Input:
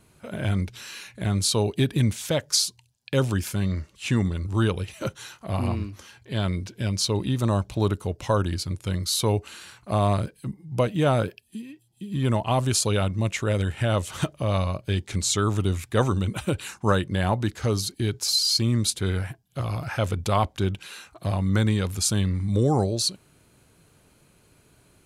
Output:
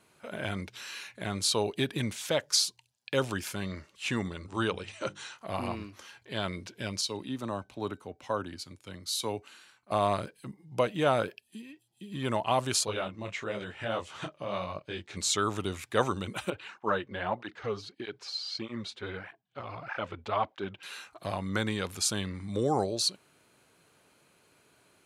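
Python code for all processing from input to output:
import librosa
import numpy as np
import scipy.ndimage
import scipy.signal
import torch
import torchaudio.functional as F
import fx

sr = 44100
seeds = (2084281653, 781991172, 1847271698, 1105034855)

y = fx.chain(x, sr, fx.brickwall_lowpass(high_hz=9700.0),
    fx.hum_notches(base_hz=50, count=7), at=(4.35, 5.38))
y = fx.chain(y, sr, fx.peak_eq(hz=260.0, db=7.0, octaves=0.34),
    fx.comb_fb(f0_hz=760.0, decay_s=0.23, harmonics='all', damping=0.0, mix_pct=50),
    fx.band_widen(depth_pct=40), at=(7.01, 9.91))
y = fx.chain(y, sr, fx.air_absorb(metres=74.0),
    fx.detune_double(cents=36), at=(12.85, 15.17))
y = fx.chain(y, sr, fx.lowpass(hz=2900.0, slope=12),
    fx.low_shelf(hz=170.0, db=-5.0),
    fx.flanger_cancel(hz=1.6, depth_ms=6.9), at=(16.5, 20.83))
y = fx.highpass(y, sr, hz=560.0, slope=6)
y = fx.high_shelf(y, sr, hz=5700.0, db=-7.5)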